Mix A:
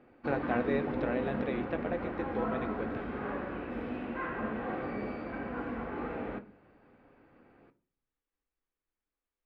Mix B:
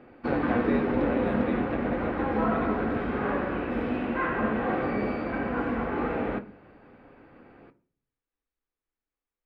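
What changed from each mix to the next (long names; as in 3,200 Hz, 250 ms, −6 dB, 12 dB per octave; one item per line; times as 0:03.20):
background +8.5 dB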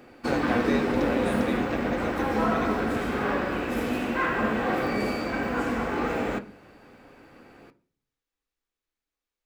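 master: remove high-frequency loss of the air 430 metres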